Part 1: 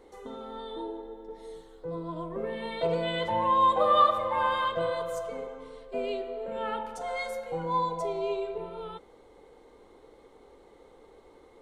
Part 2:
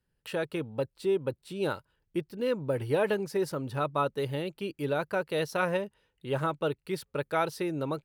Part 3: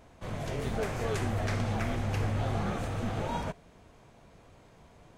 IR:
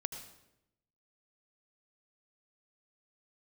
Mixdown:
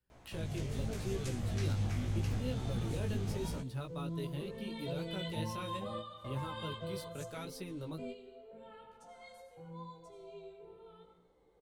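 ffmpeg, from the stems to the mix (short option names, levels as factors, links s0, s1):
-filter_complex "[0:a]equalizer=f=110:t=o:w=2.4:g=5.5,adelay=2050,volume=0.631,asplit=2[s0][s1];[s1]volume=0.335[s2];[1:a]volume=0.75,asplit=2[s3][s4];[2:a]adelay=100,volume=1[s5];[s4]apad=whole_len=602515[s6];[s0][s6]sidechaingate=range=0.0224:threshold=0.00224:ratio=16:detection=peak[s7];[3:a]atrim=start_sample=2205[s8];[s2][s8]afir=irnorm=-1:irlink=0[s9];[s7][s3][s5][s9]amix=inputs=4:normalize=0,acrossover=split=280|3000[s10][s11][s12];[s11]acompressor=threshold=0.002:ratio=2[s13];[s10][s13][s12]amix=inputs=3:normalize=0,flanger=delay=15.5:depth=4.7:speed=0.79"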